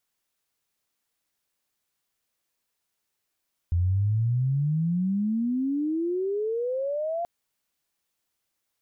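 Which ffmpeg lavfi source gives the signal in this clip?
-f lavfi -i "aevalsrc='pow(10,(-20-6*t/3.53)/20)*sin(2*PI*84*3.53/log(700/84)*(exp(log(700/84)*t/3.53)-1))':d=3.53:s=44100"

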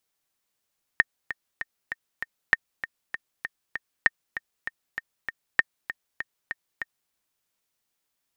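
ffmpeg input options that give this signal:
-f lavfi -i "aevalsrc='pow(10,(-4-13*gte(mod(t,5*60/196),60/196))/20)*sin(2*PI*1830*mod(t,60/196))*exp(-6.91*mod(t,60/196)/0.03)':d=6.12:s=44100"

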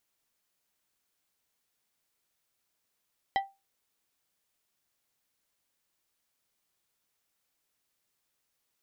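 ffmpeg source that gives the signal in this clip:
-f lavfi -i "aevalsrc='0.0891*pow(10,-3*t/0.24)*sin(2*PI*785*t)+0.0447*pow(10,-3*t/0.126)*sin(2*PI*1962.5*t)+0.0224*pow(10,-3*t/0.091)*sin(2*PI*3140*t)+0.0112*pow(10,-3*t/0.078)*sin(2*PI*3925*t)+0.00562*pow(10,-3*t/0.065)*sin(2*PI*5102.5*t)':d=0.89:s=44100"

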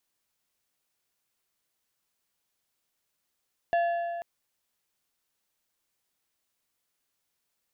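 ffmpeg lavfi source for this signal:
-f lavfi -i "aevalsrc='0.0891*pow(10,-3*t/2.35)*sin(2*PI*686*t)+0.0266*pow(10,-3*t/1.785)*sin(2*PI*1715*t)+0.00794*pow(10,-3*t/1.55)*sin(2*PI*2744*t)+0.00237*pow(10,-3*t/1.45)*sin(2*PI*3430*t)+0.000708*pow(10,-3*t/1.34)*sin(2*PI*4459*t)':d=0.49:s=44100"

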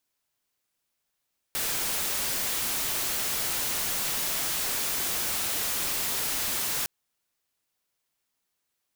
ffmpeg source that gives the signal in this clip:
-f lavfi -i "anoisesrc=c=white:a=0.0614:d=5.31:r=44100:seed=1"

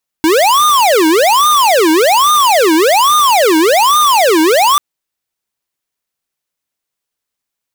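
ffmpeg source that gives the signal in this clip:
-f lavfi -i "aevalsrc='0.355*(2*lt(mod((766*t-454/(2*PI*1.2)*sin(2*PI*1.2*t)),1),0.5)-1)':d=4.54:s=44100"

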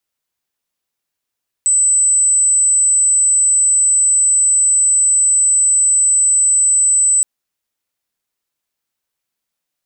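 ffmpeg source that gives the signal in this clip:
-f lavfi -i "aevalsrc='0.335*sin(2*PI*8020*t)':d=5.57:s=44100"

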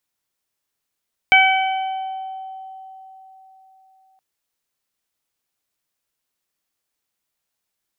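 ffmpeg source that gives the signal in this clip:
-f lavfi -i "aevalsrc='0.2*pow(10,-3*t/4.13)*sin(2*PI*763*t)+0.141*pow(10,-3*t/1.2)*sin(2*PI*1526*t)+0.398*pow(10,-3*t/1.09)*sin(2*PI*2289*t)+0.112*pow(10,-3*t/1.72)*sin(2*PI*3052*t)':d=2.87:s=44100"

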